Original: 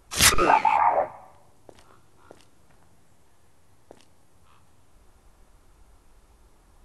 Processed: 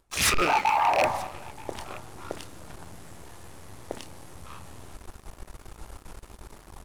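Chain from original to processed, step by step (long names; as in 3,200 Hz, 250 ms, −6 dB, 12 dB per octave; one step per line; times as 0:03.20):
loose part that buzzes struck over −38 dBFS, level −11 dBFS
reversed playback
downward compressor 16 to 1, threshold −31 dBFS, peak gain reduction 20 dB
reversed playback
single-tap delay 927 ms −24 dB
leveller curve on the samples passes 3
level +3 dB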